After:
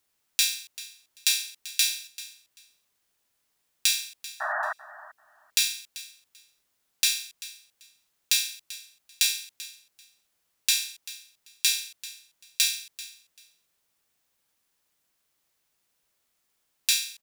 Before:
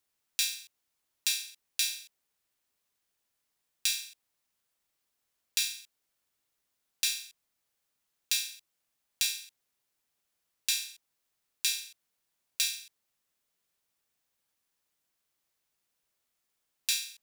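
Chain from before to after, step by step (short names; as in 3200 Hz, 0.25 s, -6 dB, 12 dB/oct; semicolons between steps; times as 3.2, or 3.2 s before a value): painted sound noise, 4.4–4.73, 600–1900 Hz -35 dBFS; feedback echo 0.389 s, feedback 18%, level -17 dB; gain +6 dB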